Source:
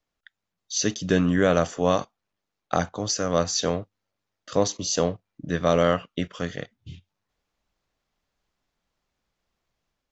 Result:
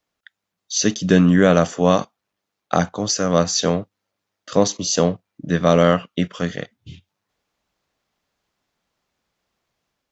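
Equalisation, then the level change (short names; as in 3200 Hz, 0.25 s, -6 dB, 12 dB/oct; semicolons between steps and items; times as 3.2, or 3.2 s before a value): HPF 120 Hz 6 dB/oct; dynamic EQ 190 Hz, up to +6 dB, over -38 dBFS, Q 1.7; +5.0 dB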